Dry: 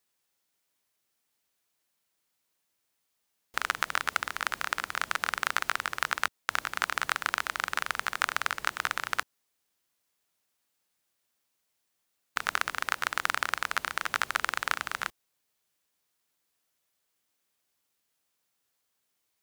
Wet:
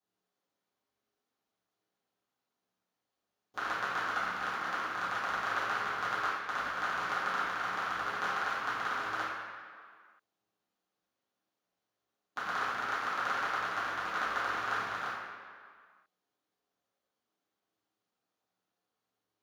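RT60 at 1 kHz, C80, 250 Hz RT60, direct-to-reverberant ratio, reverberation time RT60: 2.0 s, 1.5 dB, 1.9 s, -12.0 dB, 2.0 s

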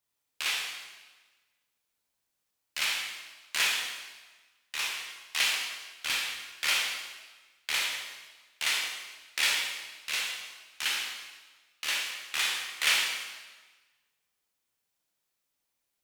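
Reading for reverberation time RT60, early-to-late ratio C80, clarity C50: 1.3 s, 3.5 dB, 1.5 dB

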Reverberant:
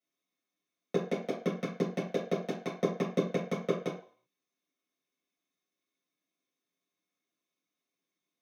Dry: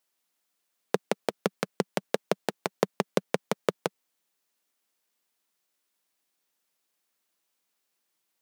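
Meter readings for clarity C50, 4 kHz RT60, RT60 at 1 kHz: 6.5 dB, 0.50 s, 0.50 s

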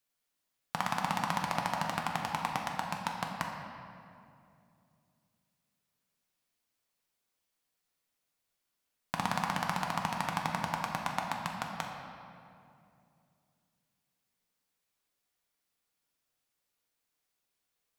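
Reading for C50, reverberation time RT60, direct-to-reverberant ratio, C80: 3.0 dB, 2.6 s, 0.0 dB, 4.0 dB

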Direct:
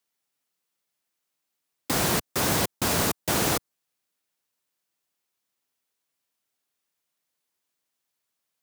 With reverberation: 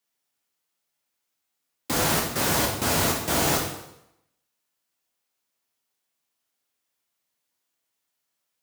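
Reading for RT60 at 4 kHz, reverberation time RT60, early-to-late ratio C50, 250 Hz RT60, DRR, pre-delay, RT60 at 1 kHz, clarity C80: 0.75 s, 0.80 s, 4.0 dB, 0.85 s, -1.5 dB, 5 ms, 0.80 s, 7.5 dB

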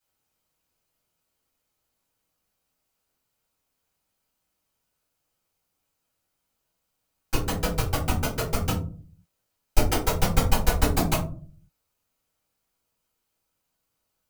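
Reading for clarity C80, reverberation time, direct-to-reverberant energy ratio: 12.5 dB, 0.45 s, -9.5 dB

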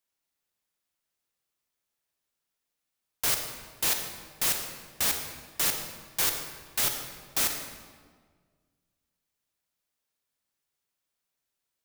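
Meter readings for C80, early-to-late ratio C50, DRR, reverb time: 7.0 dB, 5.5 dB, 4.5 dB, 1.6 s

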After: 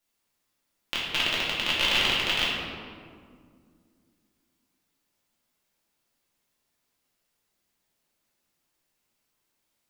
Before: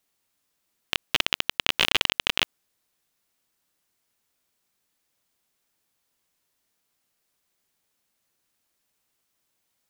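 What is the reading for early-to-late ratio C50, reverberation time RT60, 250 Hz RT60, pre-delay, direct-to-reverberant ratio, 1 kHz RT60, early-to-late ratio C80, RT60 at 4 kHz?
-0.5 dB, 2.1 s, 3.2 s, 3 ms, -7.0 dB, 1.9 s, 1.0 dB, 1.1 s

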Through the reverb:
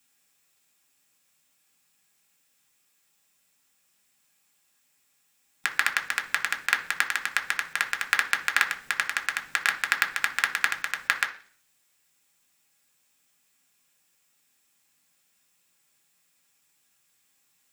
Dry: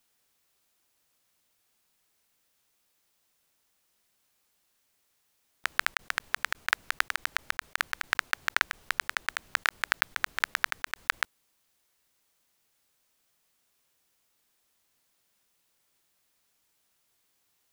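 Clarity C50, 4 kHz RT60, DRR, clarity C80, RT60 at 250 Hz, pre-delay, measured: 13.0 dB, 0.55 s, 3.0 dB, 17.5 dB, 0.65 s, 3 ms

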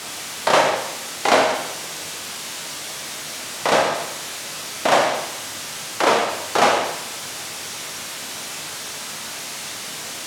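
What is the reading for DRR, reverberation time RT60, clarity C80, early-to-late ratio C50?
1.0 dB, 0.85 s, 7.5 dB, 5.0 dB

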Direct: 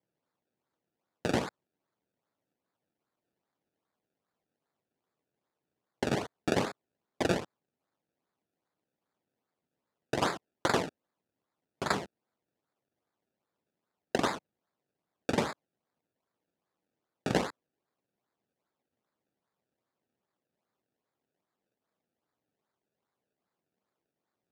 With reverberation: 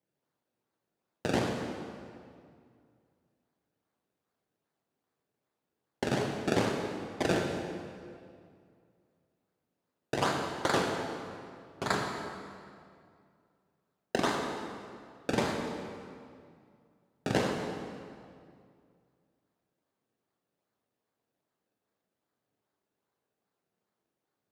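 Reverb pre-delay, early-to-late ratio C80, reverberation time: 18 ms, 4.0 dB, 2.2 s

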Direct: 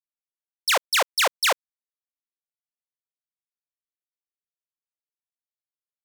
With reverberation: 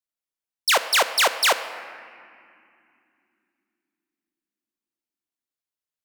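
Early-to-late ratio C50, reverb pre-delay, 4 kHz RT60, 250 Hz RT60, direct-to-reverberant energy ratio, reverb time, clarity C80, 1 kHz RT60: 11.5 dB, 3 ms, 1.7 s, 4.8 s, 10.0 dB, 2.9 s, 12.0 dB, 2.4 s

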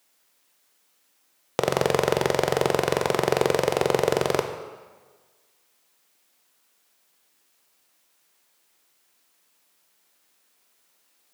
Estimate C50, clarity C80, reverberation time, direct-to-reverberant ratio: 8.0 dB, 10.0 dB, 1.4 s, 6.0 dB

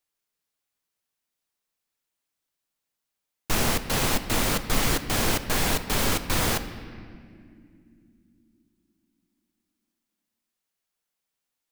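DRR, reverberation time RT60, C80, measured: 10.0 dB, 2.5 s, 12.0 dB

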